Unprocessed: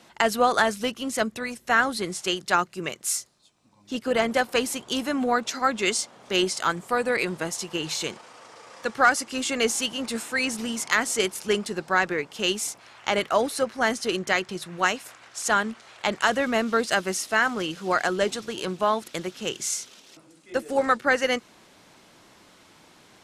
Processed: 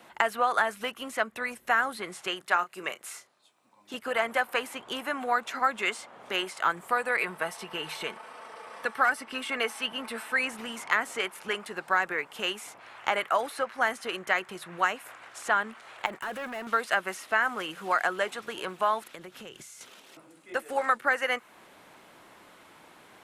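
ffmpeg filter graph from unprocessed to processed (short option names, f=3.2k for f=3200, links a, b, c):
-filter_complex "[0:a]asettb=1/sr,asplit=3[a][b][c];[a]atrim=end=2.414[d];[b]atrim=start=2.41:end=3.94,asetpts=PTS-STARTPTS,afade=t=in:d=0.004:c=qsin,afade=t=out:st=1.526:d=0.004:c=qsin,highpass=f=400:p=1,asplit=2[e][f];[f]adelay=33,volume=-13.5dB[g];[e][g]amix=inputs=2:normalize=0,atrim=end_sample=67473[h];[c]atrim=start=3.936[i];[d][h]acrossfade=d=0.004:c1=hsin:c2=qsin[j];[j][i]acrossfade=d=0.004:c1=qsin:c2=hsin,asettb=1/sr,asplit=3[k][l][m];[k]atrim=end=7.204[n];[l]atrim=start=7.2:end=10.34,asetpts=PTS-STARTPTS,afade=t=in:d=0.004:c=qsin,afade=t=out:st=3.136:d=0.004:c=qsin,bandreject=f=6.9k:w=5.1,aecho=1:1:4.6:0.39,atrim=end_sample=138474[o];[m]atrim=start=10.336[p];[n][o]acrossfade=d=0.004:c1=hsin:c2=qsin[q];[q][p]acrossfade=d=0.004:c1=qsin:c2=hsin,asettb=1/sr,asplit=3[r][s][t];[r]atrim=end=16.064[u];[s]atrim=start=16.06:end=16.67,asetpts=PTS-STARTPTS,afade=t=in:d=0.004:c=qsin,afade=t=out:st=0.606:d=0.004:c=qsin,agate=range=-33dB:threshold=-35dB:ratio=3:release=100:detection=peak,acompressor=threshold=-26dB:ratio=12:attack=3.2:release=140:knee=1:detection=peak,volume=32dB,asoftclip=hard,volume=-32dB[v];[t]atrim=start=16.666[w];[u][v]acrossfade=d=0.004:c1=hsin:c2=qsin[x];[x][w]acrossfade=d=0.004:c1=qsin:c2=hsin,asettb=1/sr,asplit=3[y][z][aa];[y]atrim=end=19.044[ab];[z]atrim=start=19.04:end=19.81,asetpts=PTS-STARTPTS,afade=t=in:d=0.004:c=qsin,afade=t=out:st=0.766:d=0.004:c=qsin,asubboost=boost=9.5:cutoff=180,acompressor=threshold=-39dB:ratio=8:attack=3.2:release=140:knee=1:detection=peak[ac];[aa]atrim=start=19.806[ad];[ab][ac]acrossfade=d=0.004:c1=hsin:c2=qsin[ae];[ae][ad]acrossfade=d=0.004:c1=qsin:c2=hsin,equalizer=f=5.5k:w=0.78:g=-13,acrossover=split=720|3000|6300[af][ag][ah][ai];[af]acompressor=threshold=-39dB:ratio=4[aj];[ag]acompressor=threshold=-26dB:ratio=4[ak];[ah]acompressor=threshold=-54dB:ratio=4[al];[ai]acompressor=threshold=-54dB:ratio=4[am];[aj][ak][al][am]amix=inputs=4:normalize=0,lowshelf=f=360:g=-11,volume=5dB"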